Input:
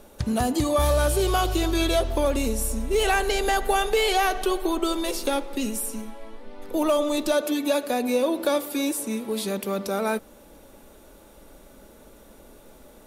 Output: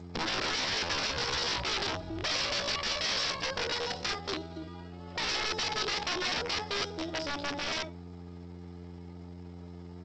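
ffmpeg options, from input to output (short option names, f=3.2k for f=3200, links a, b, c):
-filter_complex "[0:a]asplit=2[a][b];[b]aecho=0:1:71|142|213:0.335|0.0636|0.0121[c];[a][c]amix=inputs=2:normalize=0,aeval=exprs='val(0)+0.0178*(sin(2*PI*60*n/s)+sin(2*PI*2*60*n/s)/2+sin(2*PI*3*60*n/s)/3+sin(2*PI*4*60*n/s)/4+sin(2*PI*5*60*n/s)/5)':c=same,atempo=1.3,highpass=66,equalizer=f=110:w=6.5:g=5,aresample=8000,aeval=exprs='(mod(11.2*val(0)+1,2)-1)/11.2':c=same,aresample=44100,asetrate=64194,aresample=44100,atempo=0.686977,aemphasis=mode=production:type=cd,volume=-7dB" -ar 16000 -c:a g722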